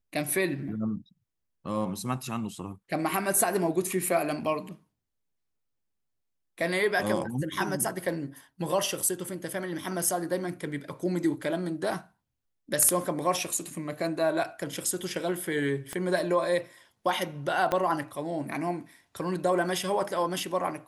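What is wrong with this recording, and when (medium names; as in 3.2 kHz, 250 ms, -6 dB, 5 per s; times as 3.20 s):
15.93 s: pop -19 dBFS
17.72 s: pop -13 dBFS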